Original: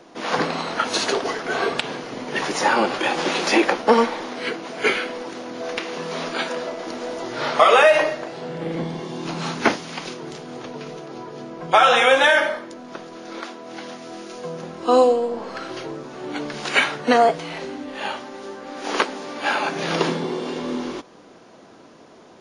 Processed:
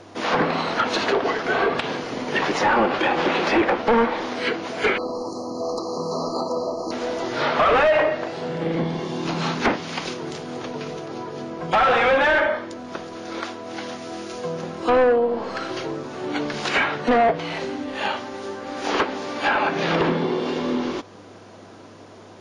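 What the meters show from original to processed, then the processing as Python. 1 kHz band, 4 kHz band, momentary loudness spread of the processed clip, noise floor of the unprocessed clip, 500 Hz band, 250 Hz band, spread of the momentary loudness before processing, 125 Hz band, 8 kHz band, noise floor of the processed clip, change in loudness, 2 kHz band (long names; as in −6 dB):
−1.0 dB, −3.5 dB, 14 LU, −47 dBFS, −0.5 dB, +1.5 dB, 19 LU, +3.0 dB, −6.0 dB, −44 dBFS, −1.5 dB, −1.0 dB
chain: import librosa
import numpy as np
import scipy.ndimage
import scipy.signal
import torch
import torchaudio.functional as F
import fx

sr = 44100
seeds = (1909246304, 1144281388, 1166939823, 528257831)

y = np.clip(x, -10.0 ** (-17.0 / 20.0), 10.0 ** (-17.0 / 20.0))
y = fx.env_lowpass_down(y, sr, base_hz=2200.0, full_db=-18.5)
y = fx.spec_erase(y, sr, start_s=4.97, length_s=1.94, low_hz=1300.0, high_hz=4000.0)
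y = fx.dmg_buzz(y, sr, base_hz=100.0, harmonics=23, level_db=-57.0, tilt_db=-8, odd_only=False)
y = y * librosa.db_to_amplitude(3.0)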